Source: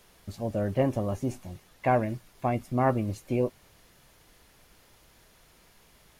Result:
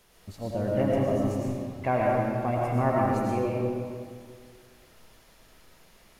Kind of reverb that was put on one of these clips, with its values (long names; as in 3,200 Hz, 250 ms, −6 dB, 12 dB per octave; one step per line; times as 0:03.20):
comb and all-pass reverb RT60 2 s, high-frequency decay 0.7×, pre-delay 65 ms, DRR −4 dB
level −3 dB